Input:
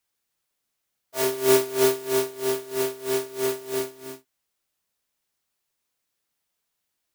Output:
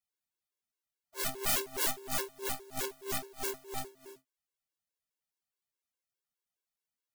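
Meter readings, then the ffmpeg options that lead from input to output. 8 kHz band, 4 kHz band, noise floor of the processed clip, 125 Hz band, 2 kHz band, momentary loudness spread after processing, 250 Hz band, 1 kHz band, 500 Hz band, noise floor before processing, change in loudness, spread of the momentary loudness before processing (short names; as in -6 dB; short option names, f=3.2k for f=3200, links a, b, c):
-5.5 dB, -6.0 dB, under -85 dBFS, -8.5 dB, -6.5 dB, 12 LU, -16.0 dB, -7.0 dB, -19.0 dB, -80 dBFS, -10.0 dB, 14 LU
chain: -af "aeval=exprs='0.562*(cos(1*acos(clip(val(0)/0.562,-1,1)))-cos(1*PI/2))+0.158*(cos(2*acos(clip(val(0)/0.562,-1,1)))-cos(2*PI/2))+0.251*(cos(3*acos(clip(val(0)/0.562,-1,1)))-cos(3*PI/2))+0.0708*(cos(5*acos(clip(val(0)/0.562,-1,1)))-cos(5*PI/2))+0.0562*(cos(6*acos(clip(val(0)/0.562,-1,1)))-cos(6*PI/2))':c=same,aeval=exprs='(mod(9.44*val(0)+1,2)-1)/9.44':c=same,afftfilt=real='re*gt(sin(2*PI*4.8*pts/sr)*(1-2*mod(floor(b*sr/1024/290),2)),0)':imag='im*gt(sin(2*PI*4.8*pts/sr)*(1-2*mod(floor(b*sr/1024/290),2)),0)':win_size=1024:overlap=0.75"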